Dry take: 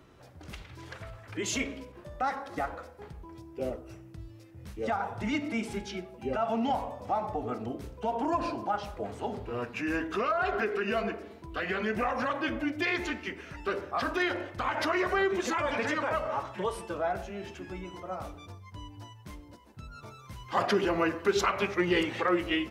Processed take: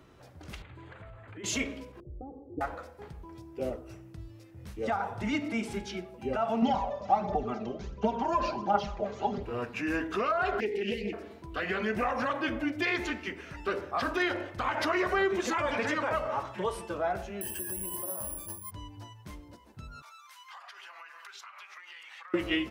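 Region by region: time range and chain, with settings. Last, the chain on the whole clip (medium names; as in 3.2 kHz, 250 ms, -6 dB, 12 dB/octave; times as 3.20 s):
0.62–1.44 s: compression 3:1, threshold -44 dBFS + boxcar filter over 8 samples
2.00–2.61 s: inverse Chebyshev low-pass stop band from 1.9 kHz, stop band 70 dB + comb 2.5 ms, depth 67%
6.62–9.43 s: steep low-pass 7 kHz 96 dB/octave + comb 5.1 ms, depth 70% + phaser 1.4 Hz, delay 2 ms, feedback 45%
10.60–11.13 s: brick-wall FIR band-stop 520–1800 Hz + loudspeaker Doppler distortion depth 0.13 ms
17.41–18.71 s: rippled EQ curve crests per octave 1.3, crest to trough 14 dB + compression 12:1, threshold -38 dBFS + careless resampling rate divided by 4×, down filtered, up zero stuff
20.02–22.34 s: high-pass 1 kHz 24 dB/octave + compression 20:1, threshold -44 dBFS
whole clip: none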